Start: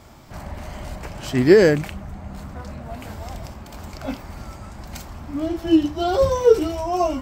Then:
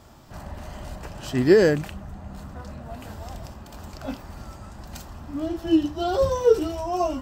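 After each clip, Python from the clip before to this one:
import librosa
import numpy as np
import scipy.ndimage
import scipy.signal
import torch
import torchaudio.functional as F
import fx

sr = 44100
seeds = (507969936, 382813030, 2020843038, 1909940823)

y = fx.notch(x, sr, hz=2200.0, q=7.5)
y = F.gain(torch.from_numpy(y), -3.5).numpy()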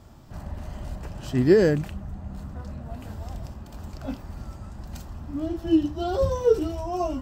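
y = fx.low_shelf(x, sr, hz=320.0, db=8.5)
y = F.gain(torch.from_numpy(y), -5.0).numpy()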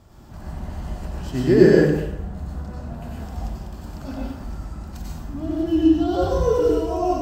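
y = fx.rev_plate(x, sr, seeds[0], rt60_s=0.92, hf_ratio=0.75, predelay_ms=80, drr_db=-5.0)
y = F.gain(torch.from_numpy(y), -2.0).numpy()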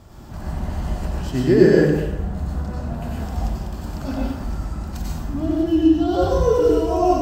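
y = fx.rider(x, sr, range_db=3, speed_s=0.5)
y = F.gain(torch.from_numpy(y), 2.5).numpy()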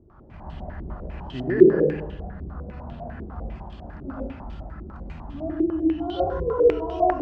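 y = fx.filter_held_lowpass(x, sr, hz=10.0, low_hz=370.0, high_hz=3200.0)
y = F.gain(torch.from_numpy(y), -10.5).numpy()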